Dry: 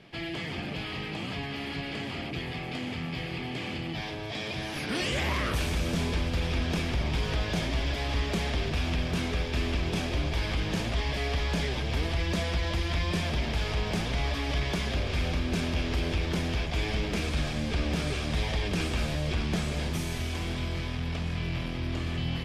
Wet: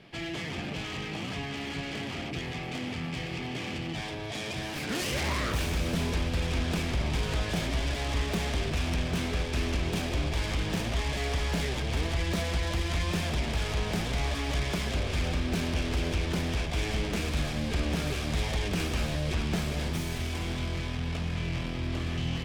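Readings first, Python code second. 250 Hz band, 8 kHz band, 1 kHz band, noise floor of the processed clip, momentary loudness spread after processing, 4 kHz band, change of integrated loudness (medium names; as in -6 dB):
-0.5 dB, +3.0 dB, -0.5 dB, -36 dBFS, 5 LU, -1.0 dB, -0.5 dB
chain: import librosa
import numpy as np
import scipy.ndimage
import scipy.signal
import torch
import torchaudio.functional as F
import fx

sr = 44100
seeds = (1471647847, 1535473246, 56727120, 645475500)

y = fx.self_delay(x, sr, depth_ms=0.15)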